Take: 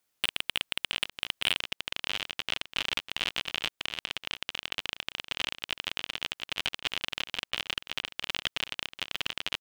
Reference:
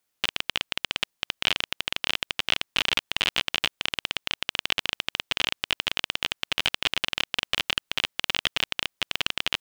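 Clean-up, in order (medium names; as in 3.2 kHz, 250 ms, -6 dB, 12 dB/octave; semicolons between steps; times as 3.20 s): clip repair -12 dBFS; interpolate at 1.10/4.70/6.81/7.51/8.03 s, 13 ms; inverse comb 692 ms -12.5 dB; gain correction +6.5 dB, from 1.59 s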